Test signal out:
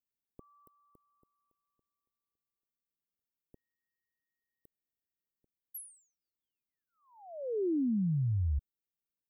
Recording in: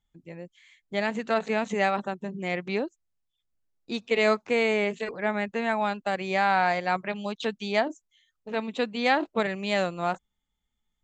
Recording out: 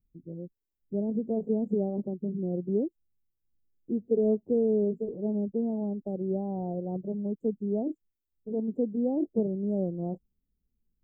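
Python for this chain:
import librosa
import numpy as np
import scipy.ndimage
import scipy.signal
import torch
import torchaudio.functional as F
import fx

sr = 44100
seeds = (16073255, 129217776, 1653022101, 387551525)

y = scipy.signal.sosfilt(scipy.signal.cheby2(4, 70, [1500.0, 5600.0], 'bandstop', fs=sr, output='sos'), x)
y = F.gain(torch.from_numpy(y), 3.5).numpy()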